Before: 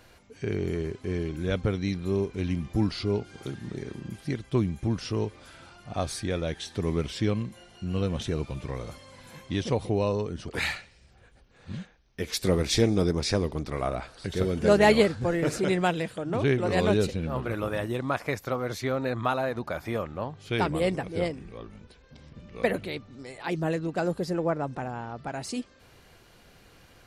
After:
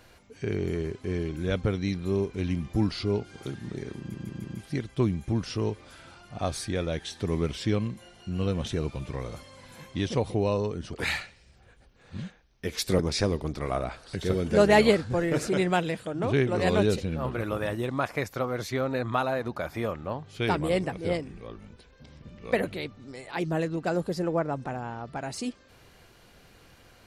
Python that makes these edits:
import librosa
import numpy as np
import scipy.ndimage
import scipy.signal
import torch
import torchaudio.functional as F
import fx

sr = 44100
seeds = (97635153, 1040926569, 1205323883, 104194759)

y = fx.edit(x, sr, fx.stutter(start_s=3.99, slice_s=0.15, count=4),
    fx.cut(start_s=12.54, length_s=0.56), tone=tone)